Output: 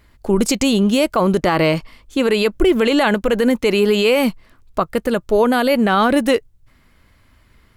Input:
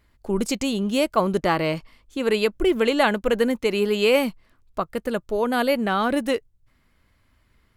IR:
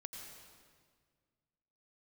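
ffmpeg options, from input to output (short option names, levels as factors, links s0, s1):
-af "alimiter=level_in=5.31:limit=0.891:release=50:level=0:latency=1,volume=0.562"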